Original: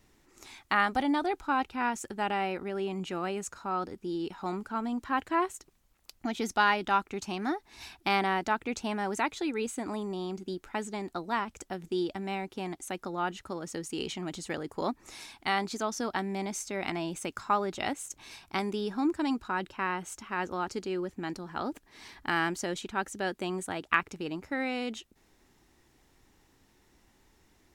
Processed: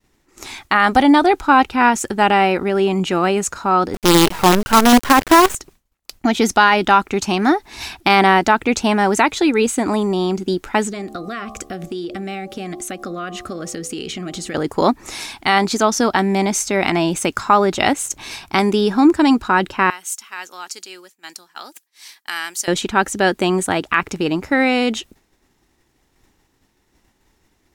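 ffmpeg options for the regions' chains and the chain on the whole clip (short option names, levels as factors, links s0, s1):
-filter_complex "[0:a]asettb=1/sr,asplit=3[s0][s1][s2];[s0]atrim=end=3.944[s3];[s1]atrim=start=3.94:end=5.55,asetpts=PTS-STARTPTS,afade=t=in:d=0.004:c=qsin,afade=t=out:st=1.606:d=0.004:c=qsin,acontrast=42,acrusher=bits=5:dc=4:mix=0:aa=0.000001[s4];[s2]atrim=start=5.546[s5];[s3][s4]acrossfade=d=0.004:c1=hsin:c2=qsin[s6];[s6][s5]acrossfade=d=0.004:c1=qsin:c2=hsin,asettb=1/sr,asplit=3[s7][s8][s9];[s7]atrim=end=10.914[s10];[s8]atrim=start=10.91:end=14.55,asetpts=PTS-STARTPTS,afade=t=in:d=0.004:c=qsin,afade=t=out:st=3.636:d=0.004:c=qsin,asuperstop=centerf=920:order=12:qfactor=3.7,bandreject=f=71.5:t=h:w=4,bandreject=f=143:t=h:w=4,bandreject=f=214.5:t=h:w=4,bandreject=f=286:t=h:w=4,bandreject=f=357.5:t=h:w=4,bandreject=f=429:t=h:w=4,bandreject=f=500.5:t=h:w=4,bandreject=f=572:t=h:w=4,bandreject=f=643.5:t=h:w=4,bandreject=f=715:t=h:w=4,bandreject=f=786.5:t=h:w=4,bandreject=f=858:t=h:w=4,bandreject=f=929.5:t=h:w=4,bandreject=f=1001:t=h:w=4,bandreject=f=1072.5:t=h:w=4,bandreject=f=1144:t=h:w=4,bandreject=f=1215.5:t=h:w=4,acompressor=threshold=0.00891:ratio=5:attack=3.2:release=140:knee=1:detection=peak[s11];[s9]atrim=start=14.546[s12];[s10][s11]acrossfade=d=0.004:c1=hsin:c2=qsin[s13];[s13][s12]acrossfade=d=0.004:c1=qsin:c2=hsin,asettb=1/sr,asplit=3[s14][s15][s16];[s14]atrim=end=19.904[s17];[s15]atrim=start=19.9:end=22.68,asetpts=PTS-STARTPTS,afade=t=in:d=0.004:c=qsin,afade=t=out:st=2.776:d=0.004:c=qsin,highpass=150,aderivative[s18];[s16]atrim=start=22.676[s19];[s17][s18]acrossfade=d=0.004:c1=hsin:c2=qsin[s20];[s20][s19]acrossfade=d=0.004:c1=qsin:c2=hsin,agate=range=0.0224:threshold=0.002:ratio=3:detection=peak,alimiter=level_in=7.5:limit=0.891:release=50:level=0:latency=1,volume=0.891"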